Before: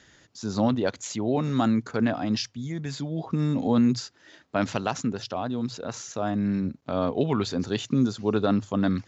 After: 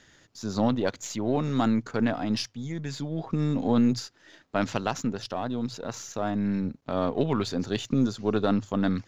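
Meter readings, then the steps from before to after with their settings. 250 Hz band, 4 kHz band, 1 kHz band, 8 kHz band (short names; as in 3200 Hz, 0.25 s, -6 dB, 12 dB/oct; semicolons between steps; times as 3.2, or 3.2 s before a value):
-1.5 dB, -1.0 dB, -1.0 dB, n/a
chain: half-wave gain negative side -3 dB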